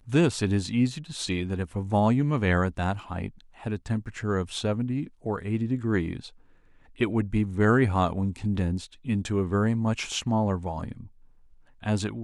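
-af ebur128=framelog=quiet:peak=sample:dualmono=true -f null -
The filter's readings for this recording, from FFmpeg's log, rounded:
Integrated loudness:
  I:         -24.2 LUFS
  Threshold: -34.7 LUFS
Loudness range:
  LRA:         4.1 LU
  Threshold: -44.7 LUFS
  LRA low:   -27.1 LUFS
  LRA high:  -22.9 LUFS
Sample peak:
  Peak:       -8.9 dBFS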